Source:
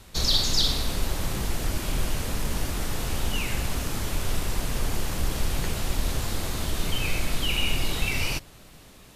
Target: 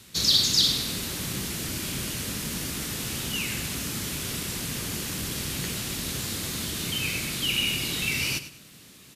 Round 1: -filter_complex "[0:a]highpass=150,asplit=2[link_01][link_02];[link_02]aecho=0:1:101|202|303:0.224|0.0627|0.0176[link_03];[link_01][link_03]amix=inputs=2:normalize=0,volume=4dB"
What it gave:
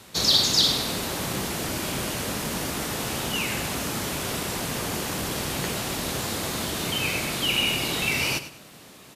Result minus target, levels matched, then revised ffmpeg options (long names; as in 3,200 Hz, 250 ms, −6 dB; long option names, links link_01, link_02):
1,000 Hz band +8.5 dB
-filter_complex "[0:a]highpass=150,equalizer=frequency=740:width_type=o:width=1.9:gain=-13,asplit=2[link_01][link_02];[link_02]aecho=0:1:101|202|303:0.224|0.0627|0.0176[link_03];[link_01][link_03]amix=inputs=2:normalize=0,volume=4dB"